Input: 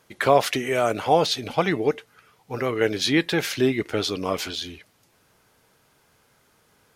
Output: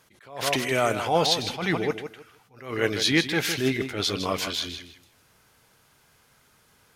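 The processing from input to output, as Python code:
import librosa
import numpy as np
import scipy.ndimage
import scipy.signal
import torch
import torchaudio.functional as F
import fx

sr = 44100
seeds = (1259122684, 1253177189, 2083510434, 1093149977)

p1 = fx.peak_eq(x, sr, hz=420.0, db=-5.0, octaves=2.3)
p2 = p1 + fx.echo_feedback(p1, sr, ms=158, feedback_pct=20, wet_db=-9.5, dry=0)
p3 = fx.attack_slew(p2, sr, db_per_s=120.0)
y = p3 * 10.0 ** (2.0 / 20.0)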